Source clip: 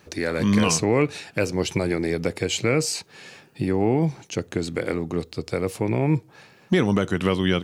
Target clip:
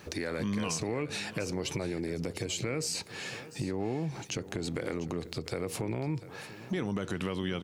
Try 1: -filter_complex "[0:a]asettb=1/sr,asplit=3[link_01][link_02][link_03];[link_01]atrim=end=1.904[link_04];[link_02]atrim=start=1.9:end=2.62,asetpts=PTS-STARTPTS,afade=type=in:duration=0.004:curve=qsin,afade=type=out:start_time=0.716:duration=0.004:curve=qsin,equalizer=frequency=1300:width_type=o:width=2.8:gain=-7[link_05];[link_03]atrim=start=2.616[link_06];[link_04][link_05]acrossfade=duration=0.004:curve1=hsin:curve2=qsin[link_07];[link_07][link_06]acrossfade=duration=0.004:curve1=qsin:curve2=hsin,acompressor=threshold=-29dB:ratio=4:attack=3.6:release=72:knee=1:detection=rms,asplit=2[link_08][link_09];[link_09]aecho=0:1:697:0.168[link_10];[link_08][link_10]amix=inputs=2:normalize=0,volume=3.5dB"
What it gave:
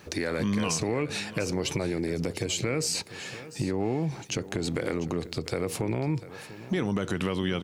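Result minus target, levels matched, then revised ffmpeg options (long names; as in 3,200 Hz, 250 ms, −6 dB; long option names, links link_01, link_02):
downward compressor: peak gain reduction −5 dB
-filter_complex "[0:a]asettb=1/sr,asplit=3[link_01][link_02][link_03];[link_01]atrim=end=1.904[link_04];[link_02]atrim=start=1.9:end=2.62,asetpts=PTS-STARTPTS,afade=type=in:duration=0.004:curve=qsin,afade=type=out:start_time=0.716:duration=0.004:curve=qsin,equalizer=frequency=1300:width_type=o:width=2.8:gain=-7[link_05];[link_03]atrim=start=2.616[link_06];[link_04][link_05]acrossfade=duration=0.004:curve1=hsin:curve2=qsin[link_07];[link_07][link_06]acrossfade=duration=0.004:curve1=qsin:curve2=hsin,acompressor=threshold=-35.5dB:ratio=4:attack=3.6:release=72:knee=1:detection=rms,asplit=2[link_08][link_09];[link_09]aecho=0:1:697:0.168[link_10];[link_08][link_10]amix=inputs=2:normalize=0,volume=3.5dB"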